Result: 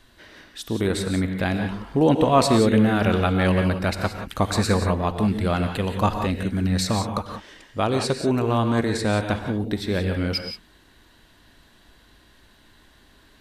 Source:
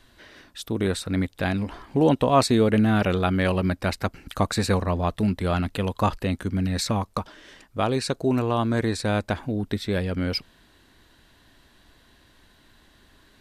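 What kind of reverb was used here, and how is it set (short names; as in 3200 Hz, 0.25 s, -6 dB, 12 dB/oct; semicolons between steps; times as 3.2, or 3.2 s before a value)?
non-linear reverb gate 0.2 s rising, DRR 5.5 dB; gain +1 dB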